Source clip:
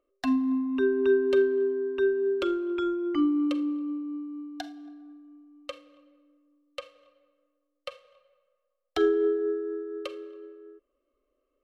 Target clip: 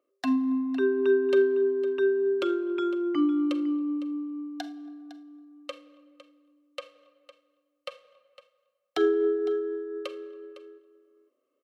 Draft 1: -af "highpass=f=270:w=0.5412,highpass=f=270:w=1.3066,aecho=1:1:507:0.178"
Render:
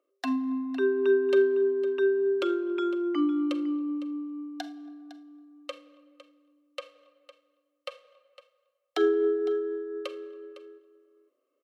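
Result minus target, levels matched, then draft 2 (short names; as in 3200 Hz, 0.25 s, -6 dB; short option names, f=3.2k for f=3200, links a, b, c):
125 Hz band -4.0 dB
-af "highpass=f=120:w=0.5412,highpass=f=120:w=1.3066,aecho=1:1:507:0.178"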